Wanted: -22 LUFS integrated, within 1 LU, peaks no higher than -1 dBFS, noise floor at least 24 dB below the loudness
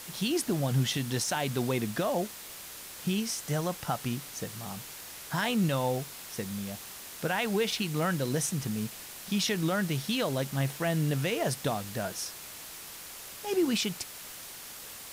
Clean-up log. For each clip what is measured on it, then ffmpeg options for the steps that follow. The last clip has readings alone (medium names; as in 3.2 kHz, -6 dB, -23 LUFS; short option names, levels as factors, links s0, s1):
noise floor -45 dBFS; noise floor target -56 dBFS; loudness -31.5 LUFS; peak level -17.5 dBFS; loudness target -22.0 LUFS
-> -af "afftdn=nr=11:nf=-45"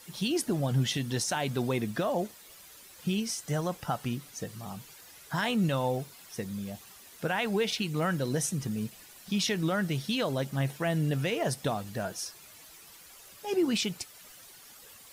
noise floor -52 dBFS; noise floor target -55 dBFS
-> -af "afftdn=nr=6:nf=-52"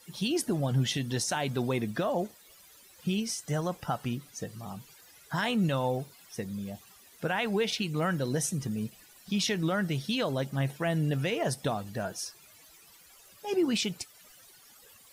noise floor -57 dBFS; loudness -31.0 LUFS; peak level -18.5 dBFS; loudness target -22.0 LUFS
-> -af "volume=2.82"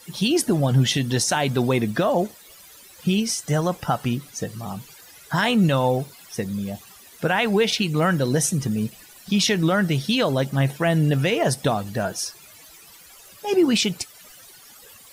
loudness -22.0 LUFS; peak level -9.5 dBFS; noise floor -48 dBFS